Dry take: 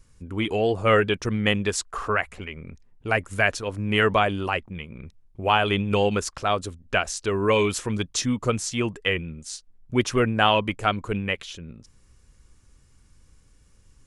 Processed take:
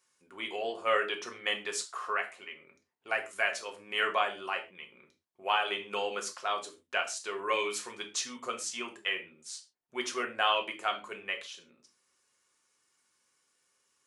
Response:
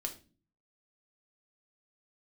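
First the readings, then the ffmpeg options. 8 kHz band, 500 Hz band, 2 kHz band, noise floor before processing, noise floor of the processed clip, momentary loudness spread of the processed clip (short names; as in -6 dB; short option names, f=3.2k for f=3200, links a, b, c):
-6.5 dB, -11.5 dB, -7.0 dB, -58 dBFS, -77 dBFS, 14 LU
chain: -filter_complex "[0:a]highpass=660[a];[1:a]atrim=start_sample=2205,atrim=end_sample=6615[b];[a][b]afir=irnorm=-1:irlink=0,volume=-6dB"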